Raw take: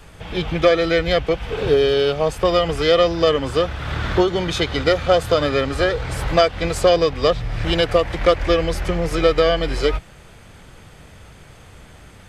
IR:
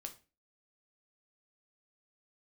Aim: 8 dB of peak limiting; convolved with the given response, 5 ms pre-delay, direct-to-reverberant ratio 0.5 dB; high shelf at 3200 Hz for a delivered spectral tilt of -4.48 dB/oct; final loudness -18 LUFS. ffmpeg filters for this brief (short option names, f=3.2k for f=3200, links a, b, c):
-filter_complex "[0:a]highshelf=f=3.2k:g=-7.5,alimiter=limit=-10dB:level=0:latency=1,asplit=2[a][b];[1:a]atrim=start_sample=2205,adelay=5[c];[b][c]afir=irnorm=-1:irlink=0,volume=3.5dB[d];[a][d]amix=inputs=2:normalize=0,volume=1.5dB"